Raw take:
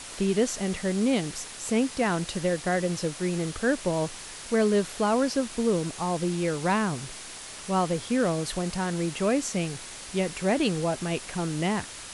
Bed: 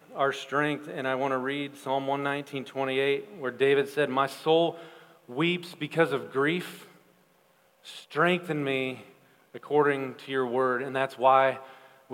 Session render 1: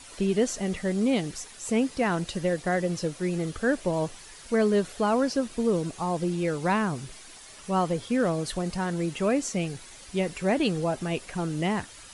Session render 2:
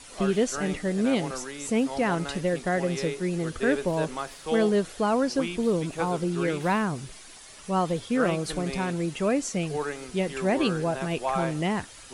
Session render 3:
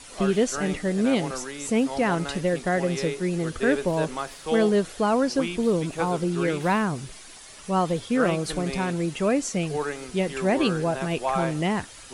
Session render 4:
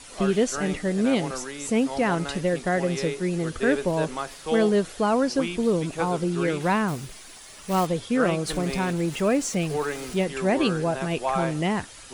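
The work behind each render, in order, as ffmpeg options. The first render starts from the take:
-af "afftdn=nr=9:nf=-41"
-filter_complex "[1:a]volume=0.398[s0];[0:a][s0]amix=inputs=2:normalize=0"
-af "volume=1.26"
-filter_complex "[0:a]asettb=1/sr,asplit=3[s0][s1][s2];[s0]atrim=end=6.884[s3];[s1]atrim=start=6.88:end=7.87,asetpts=PTS-STARTPTS,afade=t=in:d=0.004:c=qsin,afade=t=out:st=0.986:d=0.004:c=qsin,acrusher=bits=3:mode=log:mix=0:aa=0.000001[s4];[s2]atrim=start=7.866[s5];[s3][s4]acrossfade=d=0.004:c1=hsin:c2=qsin[s6];[s6][s5]acrossfade=d=0.004:c1=qsin:c2=hsin,asettb=1/sr,asplit=3[s7][s8][s9];[s7]atrim=end=8.474[s10];[s8]atrim=start=8.47:end=10.24,asetpts=PTS-STARTPTS,afade=t=in:d=0.004:c=qsin,afade=t=out:st=1.766:d=0.004:c=qsin,aeval=exprs='val(0)+0.5*0.0133*sgn(val(0))':c=same[s11];[s9]atrim=start=10.236[s12];[s10][s11]acrossfade=d=0.004:c1=hsin:c2=qsin[s13];[s13][s12]acrossfade=d=0.004:c1=qsin:c2=hsin"

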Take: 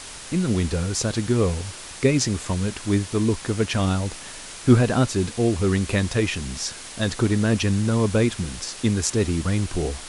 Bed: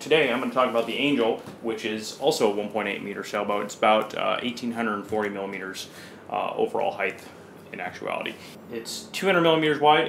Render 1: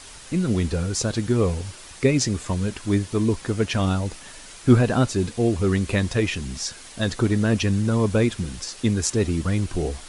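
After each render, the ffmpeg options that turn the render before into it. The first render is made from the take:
-af "afftdn=nr=6:nf=-38"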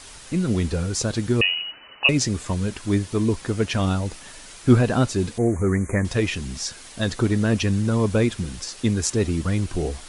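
-filter_complex "[0:a]asettb=1/sr,asplit=3[s0][s1][s2];[s0]atrim=end=1.414[s3];[s1]atrim=start=1.41:end=2.09,asetpts=PTS-STARTPTS,afade=t=in:d=0.004:c=qsin,afade=t=out:st=0.676:d=0.004:c=qsin,lowpass=f=2600:t=q:w=0.5098,lowpass=f=2600:t=q:w=0.6013,lowpass=f=2600:t=q:w=0.9,lowpass=f=2600:t=q:w=2.563,afreqshift=-3000[s4];[s2]atrim=start=2.086[s5];[s3][s4]acrossfade=d=0.004:c1=hsin:c2=qsin[s6];[s6][s5]acrossfade=d=0.004:c1=qsin:c2=hsin,asettb=1/sr,asplit=3[s7][s8][s9];[s7]atrim=end=5.384[s10];[s8]atrim=start=5.38:end=6.05,asetpts=PTS-STARTPTS,afade=t=in:d=0.004:c=qsin,afade=t=out:st=0.666:d=0.004:c=qsin,asuperstop=centerf=3800:order=20:qfactor=0.99[s11];[s9]atrim=start=6.046[s12];[s10][s11]acrossfade=d=0.004:c1=hsin:c2=qsin[s13];[s13][s12]acrossfade=d=0.004:c1=qsin:c2=hsin"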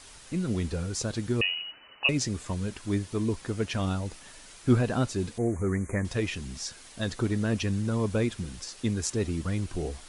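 -af "volume=0.447"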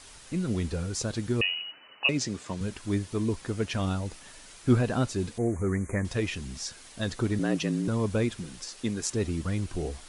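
-filter_complex "[0:a]asettb=1/sr,asplit=3[s0][s1][s2];[s0]atrim=end=1.534[s3];[s1]atrim=start=1.53:end=2.61,asetpts=PTS-STARTPTS,afade=t=in:d=0.004:c=qsin,afade=t=out:st=1.076:d=0.004:c=qsin,highpass=140,lowpass=7900[s4];[s2]atrim=start=2.606[s5];[s3][s4]acrossfade=d=0.004:c1=hsin:c2=qsin[s6];[s6][s5]acrossfade=d=0.004:c1=qsin:c2=hsin,asettb=1/sr,asplit=3[s7][s8][s9];[s7]atrim=end=7.394[s10];[s8]atrim=start=7.39:end=7.88,asetpts=PTS-STARTPTS,afade=t=in:d=0.004:c=qsin,afade=t=out:st=0.486:d=0.004:c=qsin,afreqshift=72[s11];[s9]atrim=start=7.876[s12];[s10][s11]acrossfade=d=0.004:c1=hsin:c2=qsin[s13];[s13][s12]acrossfade=d=0.004:c1=qsin:c2=hsin,asettb=1/sr,asplit=3[s14][s15][s16];[s14]atrim=end=8.394[s17];[s15]atrim=start=8.39:end=9.1,asetpts=PTS-STARTPTS,afade=t=in:d=0.004:c=qsin,afade=t=out:st=0.706:d=0.004:c=qsin,equalizer=f=75:w=1.5:g=-14[s18];[s16]atrim=start=9.096[s19];[s17][s18]acrossfade=d=0.004:c1=hsin:c2=qsin[s20];[s20][s19]acrossfade=d=0.004:c1=qsin:c2=hsin"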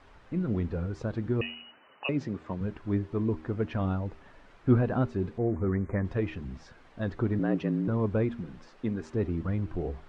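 -af "lowpass=1500,bandreject=f=78.7:t=h:w=4,bandreject=f=157.4:t=h:w=4,bandreject=f=236.1:t=h:w=4,bandreject=f=314.8:t=h:w=4,bandreject=f=393.5:t=h:w=4"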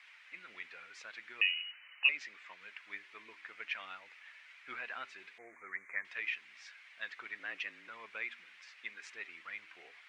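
-af "highpass=f=2200:t=q:w=3.6"

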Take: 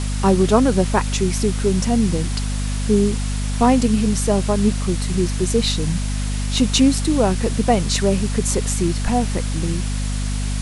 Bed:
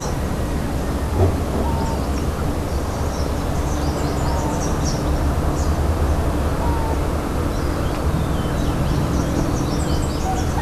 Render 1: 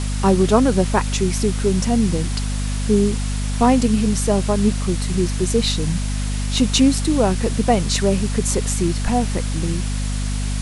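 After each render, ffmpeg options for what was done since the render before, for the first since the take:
-af anull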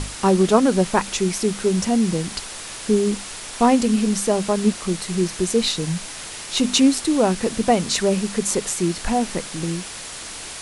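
-af "bandreject=f=50:t=h:w=6,bandreject=f=100:t=h:w=6,bandreject=f=150:t=h:w=6,bandreject=f=200:t=h:w=6,bandreject=f=250:t=h:w=6"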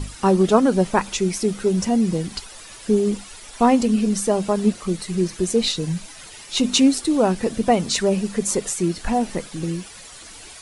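-af "afftdn=nr=11:nf=-34"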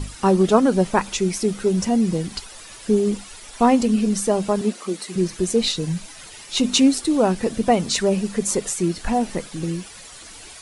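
-filter_complex "[0:a]asettb=1/sr,asplit=3[s0][s1][s2];[s0]atrim=end=4.614[s3];[s1]atrim=start=4.61:end=5.16,asetpts=PTS-STARTPTS,afade=t=in:d=0.004:c=qsin,afade=t=out:st=0.546:d=0.004:c=qsin,highpass=f=230:w=0.5412,highpass=f=230:w=1.3066[s4];[s2]atrim=start=5.156[s5];[s3][s4]acrossfade=d=0.004:c1=hsin:c2=qsin[s6];[s6][s5]acrossfade=d=0.004:c1=qsin:c2=hsin"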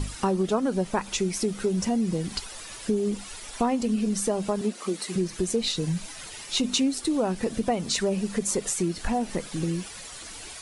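-af "acompressor=threshold=0.0631:ratio=3"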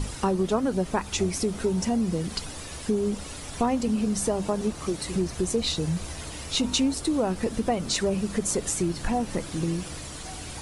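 -filter_complex "[1:a]volume=0.1[s0];[0:a][s0]amix=inputs=2:normalize=0"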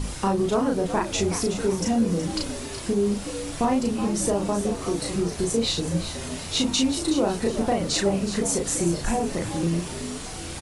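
-filter_complex "[0:a]asplit=2[s0][s1];[s1]adelay=35,volume=0.794[s2];[s0][s2]amix=inputs=2:normalize=0,asplit=5[s3][s4][s5][s6][s7];[s4]adelay=372,afreqshift=83,volume=0.299[s8];[s5]adelay=744,afreqshift=166,volume=0.101[s9];[s6]adelay=1116,afreqshift=249,volume=0.0347[s10];[s7]adelay=1488,afreqshift=332,volume=0.0117[s11];[s3][s8][s9][s10][s11]amix=inputs=5:normalize=0"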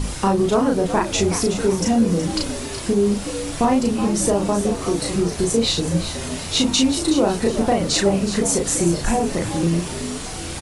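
-af "volume=1.78"

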